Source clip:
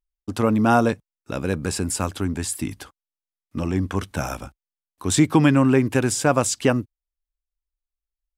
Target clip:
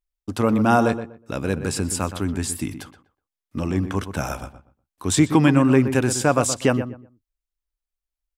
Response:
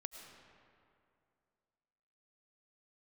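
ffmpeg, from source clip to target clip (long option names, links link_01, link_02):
-filter_complex "[0:a]asplit=2[link_01][link_02];[link_02]adelay=122,lowpass=frequency=1900:poles=1,volume=-10dB,asplit=2[link_03][link_04];[link_04]adelay=122,lowpass=frequency=1900:poles=1,volume=0.23,asplit=2[link_05][link_06];[link_06]adelay=122,lowpass=frequency=1900:poles=1,volume=0.23[link_07];[link_01][link_03][link_05][link_07]amix=inputs=4:normalize=0"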